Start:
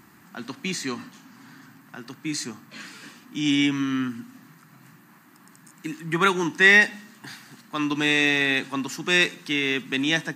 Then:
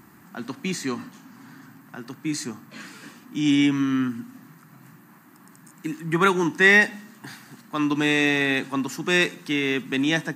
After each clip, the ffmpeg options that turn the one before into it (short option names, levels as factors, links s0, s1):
-af "equalizer=f=3700:w=0.51:g=-6,volume=1.41"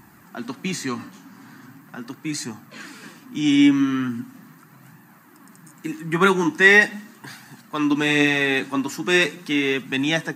-af "flanger=delay=1.1:depth=9.5:regen=46:speed=0.4:shape=sinusoidal,volume=2"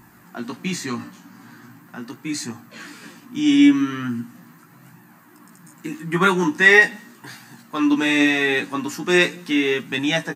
-filter_complex "[0:a]asplit=2[s0][s1];[s1]adelay=17,volume=0.631[s2];[s0][s2]amix=inputs=2:normalize=0,volume=0.891"